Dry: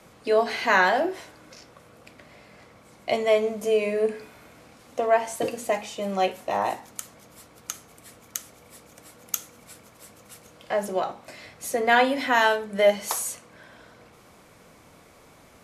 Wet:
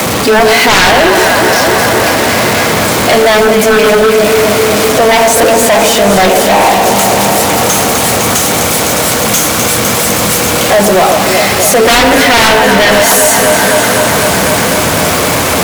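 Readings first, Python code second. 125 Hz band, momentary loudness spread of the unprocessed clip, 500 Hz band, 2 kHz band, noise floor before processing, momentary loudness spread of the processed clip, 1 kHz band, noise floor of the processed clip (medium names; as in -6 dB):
+29.0 dB, 18 LU, +18.0 dB, +19.5 dB, -53 dBFS, 4 LU, +18.5 dB, -11 dBFS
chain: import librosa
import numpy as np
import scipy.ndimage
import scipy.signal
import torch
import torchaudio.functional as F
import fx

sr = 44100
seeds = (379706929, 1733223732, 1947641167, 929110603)

p1 = x + 0.5 * 10.0 ** (-24.5 / 20.0) * np.sign(x)
p2 = scipy.signal.sosfilt(scipy.signal.butter(4, 60.0, 'highpass', fs=sr, output='sos'), p1)
p3 = p2 + fx.echo_alternate(p2, sr, ms=127, hz=1300.0, feedback_pct=90, wet_db=-7.0, dry=0)
p4 = fx.fold_sine(p3, sr, drive_db=16, ceiling_db=-1.5)
y = p4 * librosa.db_to_amplitude(-1.5)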